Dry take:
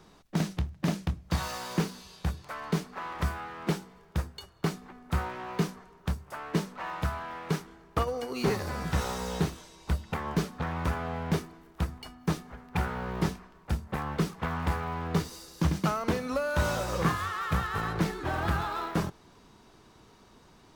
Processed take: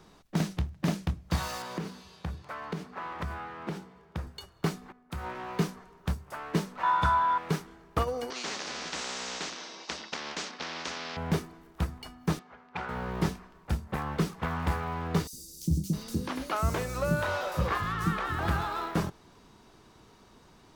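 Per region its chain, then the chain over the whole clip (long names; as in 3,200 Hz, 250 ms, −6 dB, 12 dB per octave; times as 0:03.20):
0:01.62–0:04.27: high-pass filter 57 Hz 24 dB per octave + high-shelf EQ 4,900 Hz −10 dB + downward compressor 10 to 1, threshold −29 dBFS
0:04.92–0:05.35: downward compressor 12 to 1, threshold −31 dBFS + multiband upward and downward expander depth 70%
0:06.83–0:07.38: low-pass filter 9,200 Hz + hollow resonant body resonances 1,000/1,400/3,500 Hz, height 17 dB, ringing for 35 ms
0:08.30–0:11.17: mu-law and A-law mismatch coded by A + elliptic band-pass filter 250–5,500 Hz + every bin compressed towards the loudest bin 4 to 1
0:12.39–0:12.89: high-pass filter 660 Hz 6 dB per octave + high-frequency loss of the air 150 metres + notch filter 1,800 Hz, Q 20
0:15.27–0:18.39: three-band delay without the direct sound highs, lows, mids 60/660 ms, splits 350/5,200 Hz + one half of a high-frequency compander encoder only
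whole clip: no processing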